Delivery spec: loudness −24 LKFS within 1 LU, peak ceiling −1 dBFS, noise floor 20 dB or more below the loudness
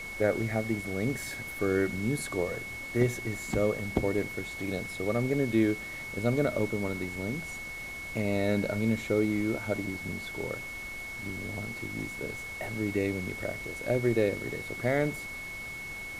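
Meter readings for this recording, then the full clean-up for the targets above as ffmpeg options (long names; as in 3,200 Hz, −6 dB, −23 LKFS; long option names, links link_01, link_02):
interfering tone 2,200 Hz; level of the tone −38 dBFS; background noise floor −40 dBFS; target noise floor −51 dBFS; integrated loudness −31.0 LKFS; sample peak −9.5 dBFS; target loudness −24.0 LKFS
→ -af "bandreject=frequency=2200:width=30"
-af "afftdn=noise_reduction=11:noise_floor=-40"
-af "volume=7dB"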